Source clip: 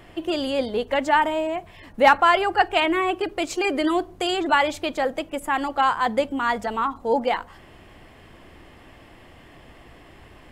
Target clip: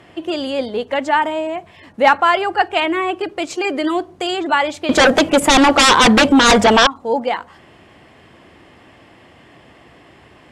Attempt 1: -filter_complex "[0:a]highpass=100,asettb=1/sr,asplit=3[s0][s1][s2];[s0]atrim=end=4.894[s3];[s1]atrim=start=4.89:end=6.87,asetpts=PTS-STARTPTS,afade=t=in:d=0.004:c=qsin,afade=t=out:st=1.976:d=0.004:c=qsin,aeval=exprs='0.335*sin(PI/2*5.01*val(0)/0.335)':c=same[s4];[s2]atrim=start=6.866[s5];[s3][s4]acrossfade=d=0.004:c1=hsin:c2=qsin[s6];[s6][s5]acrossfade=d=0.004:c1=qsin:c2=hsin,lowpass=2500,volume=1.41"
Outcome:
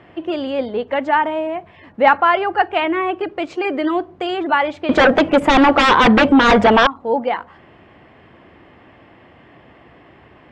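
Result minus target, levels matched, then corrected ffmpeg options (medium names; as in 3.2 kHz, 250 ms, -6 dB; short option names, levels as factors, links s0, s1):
8 kHz band -16.5 dB
-filter_complex "[0:a]highpass=100,asettb=1/sr,asplit=3[s0][s1][s2];[s0]atrim=end=4.894[s3];[s1]atrim=start=4.89:end=6.87,asetpts=PTS-STARTPTS,afade=t=in:d=0.004:c=qsin,afade=t=out:st=1.976:d=0.004:c=qsin,aeval=exprs='0.335*sin(PI/2*5.01*val(0)/0.335)':c=same[s4];[s2]atrim=start=6.866[s5];[s3][s4]acrossfade=d=0.004:c1=hsin:c2=qsin[s6];[s6][s5]acrossfade=d=0.004:c1=qsin:c2=hsin,lowpass=9100,volume=1.41"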